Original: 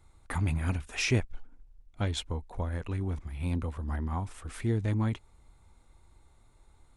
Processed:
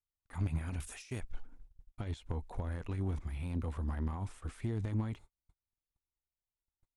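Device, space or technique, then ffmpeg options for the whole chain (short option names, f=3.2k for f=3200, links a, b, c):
de-esser from a sidechain: -filter_complex "[0:a]asplit=2[a][b];[b]highpass=f=5.8k:p=1,apad=whole_len=306965[c];[a][c]sidechaincompress=threshold=-57dB:ratio=6:attack=1.3:release=40,agate=range=-40dB:threshold=-50dB:ratio=16:detection=peak,asettb=1/sr,asplit=3[d][e][f];[d]atrim=end=0.804[g];[e]atrim=start=0.8:end=1.21,asetpts=PTS-STARTPTS,afade=t=in:d=0.004:c=qsin,afade=t=out:st=0.406:d=0.004:c=qsin,aemphasis=mode=production:type=75kf[h];[f]atrim=start=1.206[i];[g][h]acrossfade=d=0.004:c1=hsin:c2=qsin[j];[j][i]acrossfade=d=0.004:c1=qsin:c2=hsin"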